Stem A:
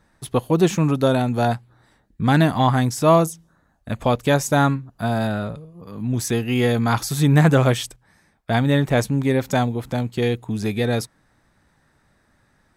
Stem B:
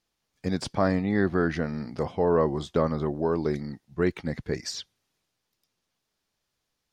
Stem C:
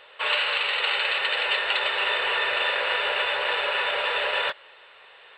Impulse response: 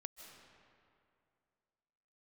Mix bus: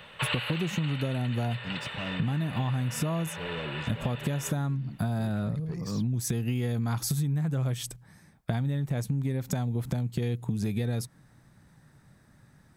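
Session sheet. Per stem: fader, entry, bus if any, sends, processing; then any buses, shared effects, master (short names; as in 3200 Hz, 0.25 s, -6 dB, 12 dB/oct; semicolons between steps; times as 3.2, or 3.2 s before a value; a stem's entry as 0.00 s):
-2.5 dB, 0.00 s, bus A, no send, dry
-11.5 dB, 1.20 s, bus A, no send, soft clip -26.5 dBFS, distortion -7 dB
+0.5 dB, 0.00 s, no bus, no send, auto duck -14 dB, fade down 1.20 s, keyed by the first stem
bus A: 0.0 dB, bell 140 Hz +12.5 dB 1.4 oct; compressor, threshold -19 dBFS, peak gain reduction 15 dB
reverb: off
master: high shelf 7500 Hz +8 dB; compressor, threshold -26 dBFS, peak gain reduction 9.5 dB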